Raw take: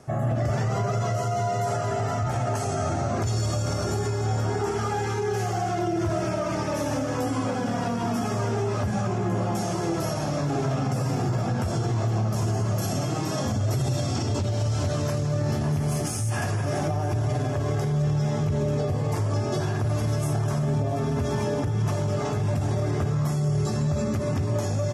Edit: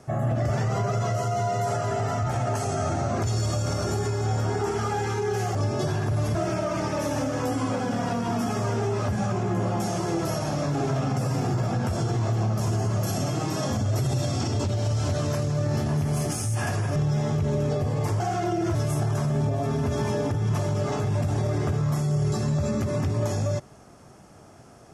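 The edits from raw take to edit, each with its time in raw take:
5.55–6.10 s: swap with 19.28–20.08 s
16.71–18.04 s: delete

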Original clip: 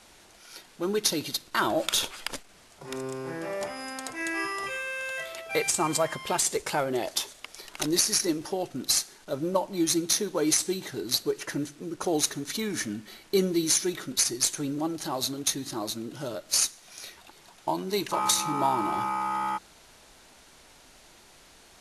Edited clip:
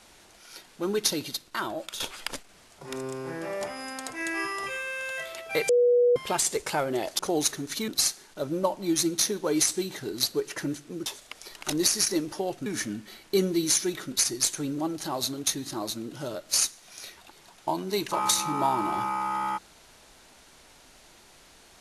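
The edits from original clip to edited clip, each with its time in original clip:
1.05–2.00 s: fade out, to -14 dB
5.69–6.16 s: bleep 486 Hz -17 dBFS
7.19–8.79 s: swap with 11.97–12.66 s

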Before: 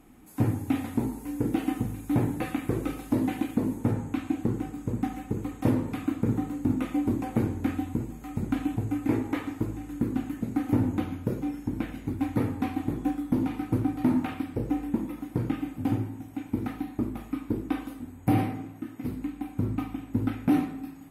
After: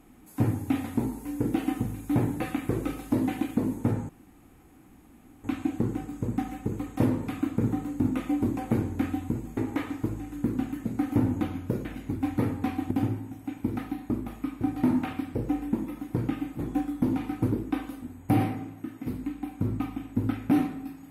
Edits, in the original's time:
4.09 s: insert room tone 1.35 s
8.22–9.14 s: delete
11.42–11.83 s: delete
12.89–13.82 s: swap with 15.80–17.50 s

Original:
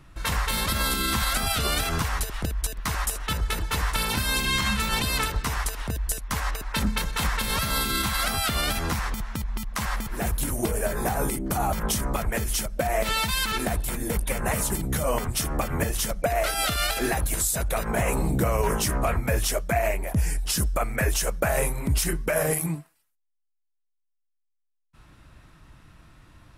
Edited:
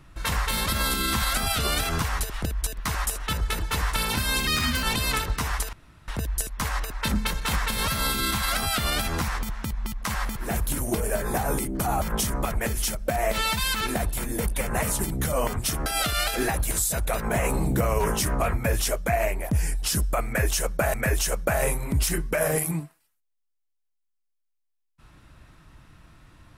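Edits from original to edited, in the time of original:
4.47–4.89 s: speed 117%
5.79 s: insert room tone 0.35 s
15.57–16.49 s: delete
20.89–21.57 s: loop, 2 plays

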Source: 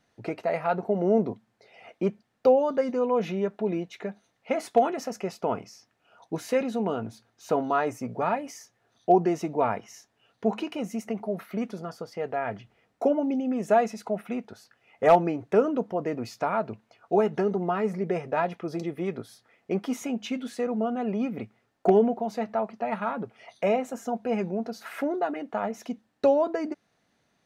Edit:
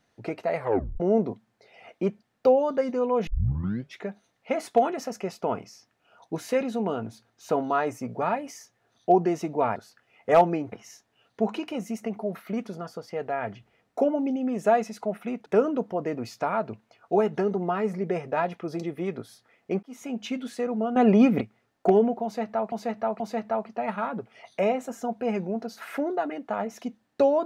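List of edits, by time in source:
0.56 s: tape stop 0.44 s
3.27 s: tape start 0.72 s
14.50–15.46 s: move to 9.76 s
19.83–20.21 s: fade in
20.96–21.41 s: gain +10.5 dB
22.24–22.72 s: loop, 3 plays

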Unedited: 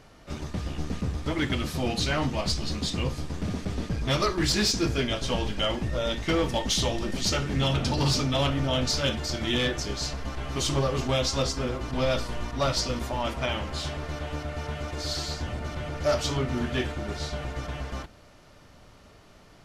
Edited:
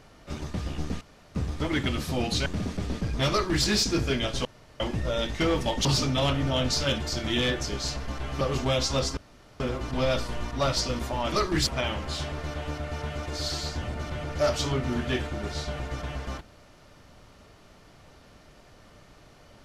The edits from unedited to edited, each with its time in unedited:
1.01 s: insert room tone 0.34 s
2.12–3.34 s: delete
4.18–4.53 s: copy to 13.32 s
5.33–5.68 s: room tone
6.73–8.02 s: delete
10.58–10.84 s: delete
11.60 s: insert room tone 0.43 s

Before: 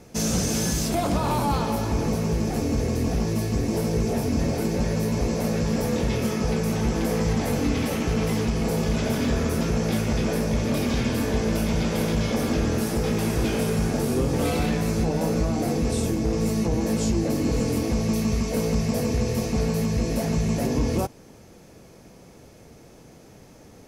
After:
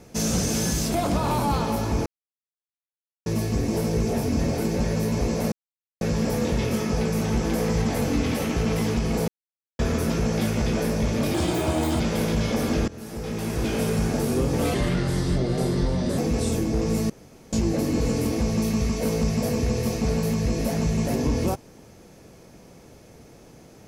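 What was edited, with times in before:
2.06–3.26 s: mute
5.52 s: insert silence 0.49 s
8.79–9.30 s: mute
10.85–11.80 s: speed 144%
12.68–13.65 s: fade in linear, from -20 dB
14.54–15.69 s: speed 80%
16.61–17.04 s: room tone

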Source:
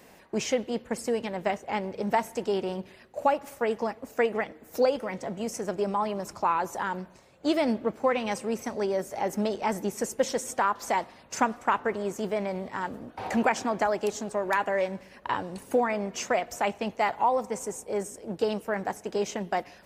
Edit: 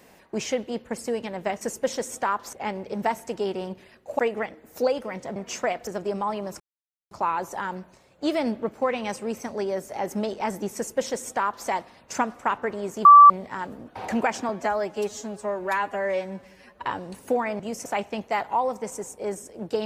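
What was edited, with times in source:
3.27–4.17 s: delete
5.34–5.60 s: swap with 16.03–16.54 s
6.33 s: insert silence 0.51 s
9.97–10.89 s: copy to 1.61 s
12.27–12.52 s: bleep 1.16 kHz -6 dBFS
13.71–15.28 s: stretch 1.5×

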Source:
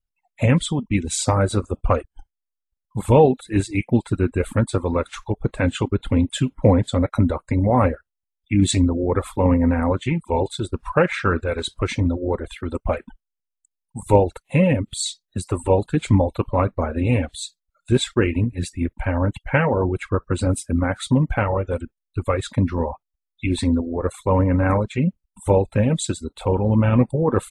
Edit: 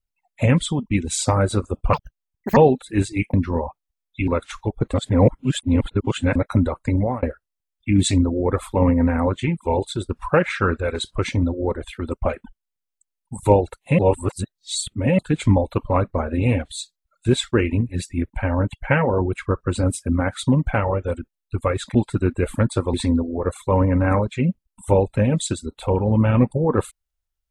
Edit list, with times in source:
1.93–3.15 s: speed 192%
3.92–4.91 s: swap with 22.58–23.52 s
5.57–6.99 s: reverse
7.61–7.86 s: fade out
14.62–15.82 s: reverse

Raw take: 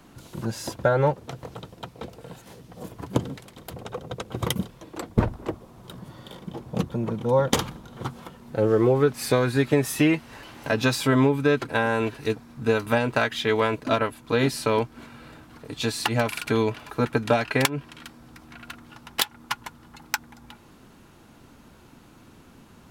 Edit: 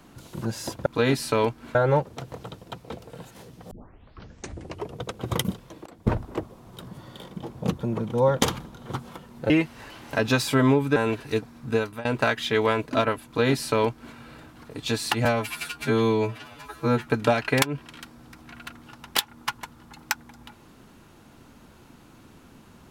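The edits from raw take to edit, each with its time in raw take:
2.82 s: tape start 1.33 s
4.97–5.28 s: fade in, from -23.5 dB
8.61–10.03 s: delete
11.49–11.90 s: delete
12.63–12.99 s: fade out, to -22 dB
14.20–15.09 s: copy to 0.86 s
16.19–17.10 s: stretch 2×

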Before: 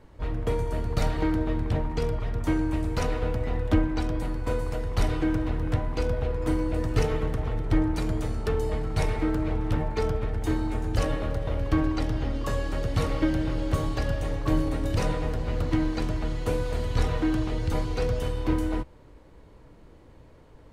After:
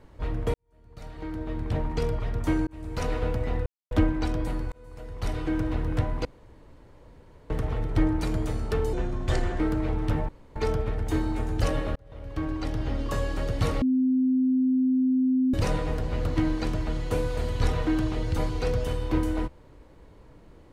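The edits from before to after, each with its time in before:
0.54–1.86 s: fade in quadratic
2.67–3.14 s: fade in
3.66 s: insert silence 0.25 s
4.47–5.50 s: fade in
6.00–7.25 s: room tone
8.68–9.22 s: speed 81%
9.91 s: insert room tone 0.27 s
11.31–12.32 s: fade in
13.17–14.89 s: bleep 258 Hz -19.5 dBFS

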